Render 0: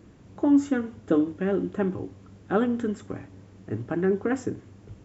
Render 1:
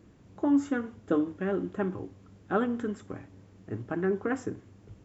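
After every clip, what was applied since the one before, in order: dynamic EQ 1200 Hz, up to +5 dB, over -42 dBFS, Q 1; gain -5 dB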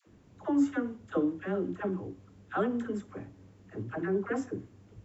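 dispersion lows, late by 74 ms, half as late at 630 Hz; gain -2 dB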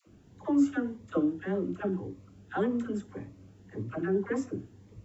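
cascading phaser rising 1.8 Hz; gain +2 dB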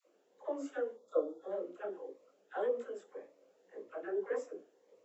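ladder high-pass 470 Hz, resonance 70%; spectral gain 0.95–1.51, 1400–3300 Hz -23 dB; detuned doubles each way 48 cents; gain +6 dB

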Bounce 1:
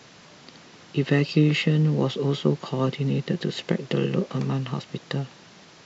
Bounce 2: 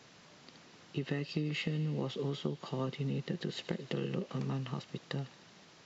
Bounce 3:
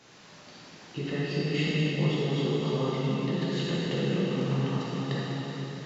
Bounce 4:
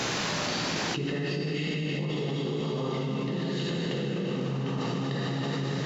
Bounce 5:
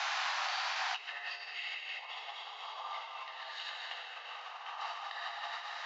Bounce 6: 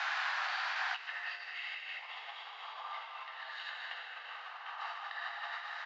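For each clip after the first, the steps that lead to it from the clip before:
compressor, threshold -22 dBFS, peak gain reduction 8.5 dB; thin delay 76 ms, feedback 79%, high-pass 2100 Hz, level -17 dB; gain -9 dB
plate-style reverb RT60 4 s, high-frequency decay 0.85×, DRR -8.5 dB
fast leveller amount 100%; gain -8 dB
Chebyshev high-pass 730 Hz, order 5; air absorption 170 m
fifteen-band EQ 250 Hz -11 dB, 1600 Hz +8 dB, 6300 Hz -7 dB; frequency-shifting echo 0.374 s, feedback 60%, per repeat +140 Hz, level -17 dB; gain -3.5 dB

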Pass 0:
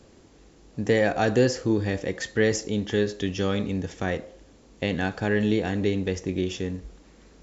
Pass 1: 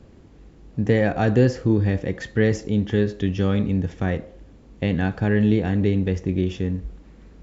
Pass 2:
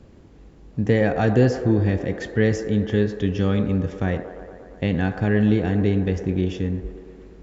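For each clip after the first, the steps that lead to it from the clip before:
tone controls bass +9 dB, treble -10 dB
band-limited delay 0.116 s, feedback 75%, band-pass 730 Hz, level -8.5 dB

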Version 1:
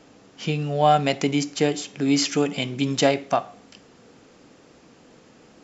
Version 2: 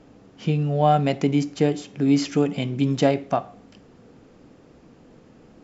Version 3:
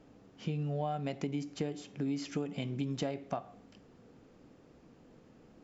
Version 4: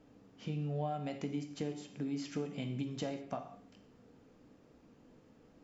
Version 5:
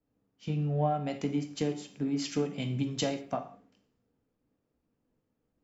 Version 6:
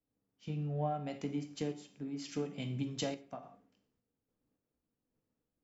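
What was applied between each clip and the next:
tilt -2.5 dB/oct; gain -2.5 dB
compressor 6:1, threshold -23 dBFS, peak gain reduction 10.5 dB; gain -8.5 dB
non-linear reverb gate 0.23 s falling, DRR 6 dB; gain -4 dB
three-band expander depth 100%; gain +6 dB
random-step tremolo; gain -5.5 dB

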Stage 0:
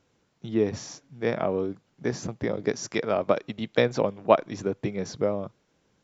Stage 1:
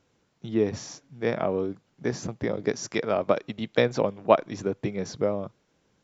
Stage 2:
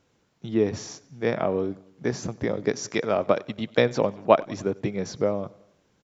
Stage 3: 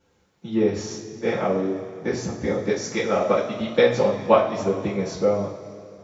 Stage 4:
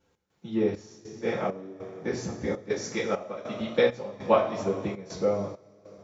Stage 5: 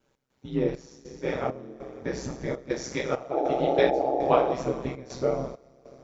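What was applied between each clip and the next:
nothing audible
feedback echo 94 ms, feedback 56%, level -23.5 dB; gain +1.5 dB
two-slope reverb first 0.36 s, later 2.7 s, from -17 dB, DRR -9.5 dB; gain -7 dB
step gate "x.xxx..xxx..xxxx" 100 bpm -12 dB; gain -5 dB
painted sound noise, 3.31–4.54, 330–810 Hz -25 dBFS; ring modulator 65 Hz; gain +2.5 dB

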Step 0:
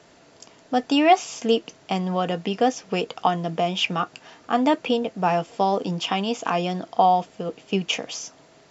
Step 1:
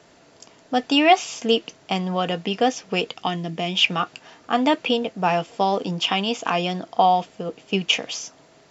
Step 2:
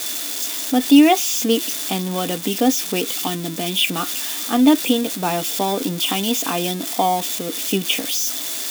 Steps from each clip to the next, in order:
spectral gain 3.11–3.75, 400–1700 Hz -6 dB; dynamic EQ 3000 Hz, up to +6 dB, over -38 dBFS, Q 0.88
switching spikes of -13 dBFS; small resonant body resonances 280/3500 Hz, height 14 dB, ringing for 35 ms; gain -3 dB

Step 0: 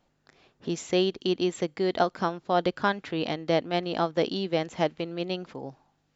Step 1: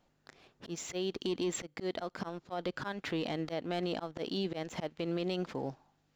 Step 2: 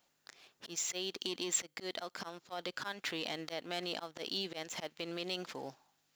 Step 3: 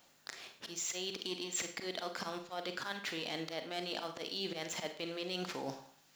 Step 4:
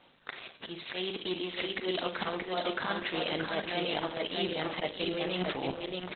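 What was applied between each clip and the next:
auto swell 0.285 s; sample leveller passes 1; limiter -26 dBFS, peak gain reduction 11.5 dB
tilt +3.5 dB/oct; gain -2.5 dB
reverse; compressor 6:1, threshold -46 dBFS, peak gain reduction 17.5 dB; reverse; Schroeder reverb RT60 0.45 s, combs from 33 ms, DRR 6.5 dB; gain +9 dB
feedback echo 0.627 s, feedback 29%, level -3 dB; gain +8 dB; Opus 8 kbps 48000 Hz

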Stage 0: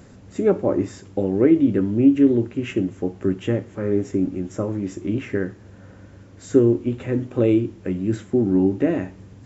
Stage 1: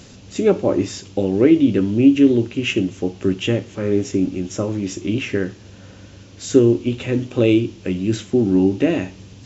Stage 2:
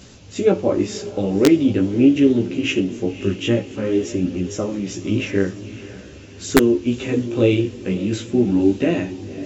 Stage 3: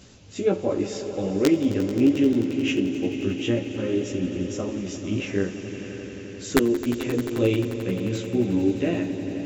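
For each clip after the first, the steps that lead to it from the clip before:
band shelf 4100 Hz +12 dB; gain +2.5 dB
diffused feedback echo 0.55 s, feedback 49%, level -14.5 dB; wrapped overs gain 2 dB; chorus voices 2, 0.46 Hz, delay 16 ms, depth 4.5 ms; gain +2.5 dB
swelling echo 88 ms, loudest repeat 5, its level -15.5 dB; gain -6 dB

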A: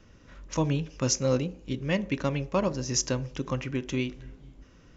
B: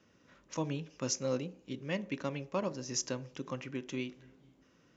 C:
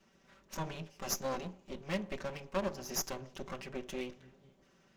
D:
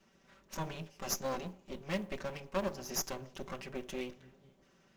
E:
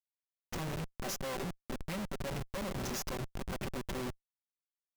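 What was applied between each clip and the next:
HPF 160 Hz 12 dB/oct; gain -7.5 dB
minimum comb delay 5.2 ms; gain +1 dB
modulation noise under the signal 33 dB
Schmitt trigger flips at -43.5 dBFS; gain +4 dB

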